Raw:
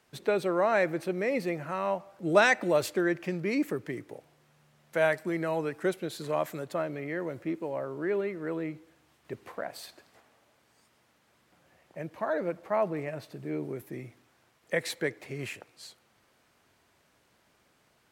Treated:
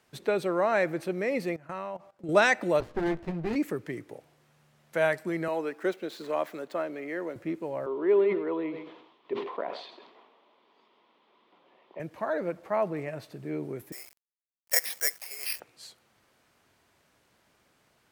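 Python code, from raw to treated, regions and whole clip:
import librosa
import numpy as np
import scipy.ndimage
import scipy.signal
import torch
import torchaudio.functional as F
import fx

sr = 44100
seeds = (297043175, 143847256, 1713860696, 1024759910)

y = fx.chain(x, sr, fx.high_shelf(hz=9200.0, db=-6.0),
    fx.level_steps(step_db=18), at=(1.56, 2.29))
y = fx.chain(y, sr, fx.air_absorb(metres=310.0),
    fx.doubler(ms=18.0, db=-6.0),
    fx.running_max(window=33), at=(2.8, 3.56))
y = fx.chain(y, sr, fx.median_filter(points=5),
    fx.highpass(hz=220.0, slope=24), at=(5.48, 7.36))
y = fx.chain(y, sr, fx.cabinet(low_hz=220.0, low_slope=24, high_hz=3800.0, hz=(400.0, 1000.0, 1600.0, 3400.0), db=(8, 10, -8, 6)),
    fx.echo_single(ms=129, db=-15.0),
    fx.sustainer(db_per_s=67.0), at=(7.86, 12.0))
y = fx.chain(y, sr, fx.highpass(hz=650.0, slope=24),
    fx.quant_companded(bits=4),
    fx.resample_bad(factor=6, down='filtered', up='zero_stuff'), at=(13.92, 15.6))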